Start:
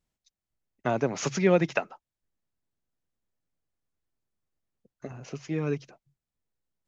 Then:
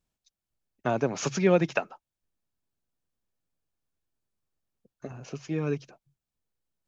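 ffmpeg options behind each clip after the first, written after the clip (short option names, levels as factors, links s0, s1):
-af "bandreject=f=2000:w=11"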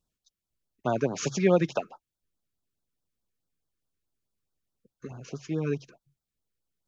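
-af "afftfilt=real='re*(1-between(b*sr/1024,670*pow(2400/670,0.5+0.5*sin(2*PI*4.7*pts/sr))/1.41,670*pow(2400/670,0.5+0.5*sin(2*PI*4.7*pts/sr))*1.41))':imag='im*(1-between(b*sr/1024,670*pow(2400/670,0.5+0.5*sin(2*PI*4.7*pts/sr))/1.41,670*pow(2400/670,0.5+0.5*sin(2*PI*4.7*pts/sr))*1.41))':win_size=1024:overlap=0.75"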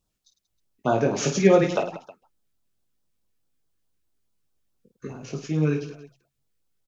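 -af "aecho=1:1:20|52|103.2|185.1|316.2:0.631|0.398|0.251|0.158|0.1,volume=1.5"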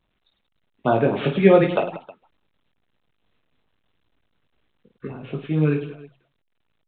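-af "volume=1.41" -ar 8000 -c:a pcm_alaw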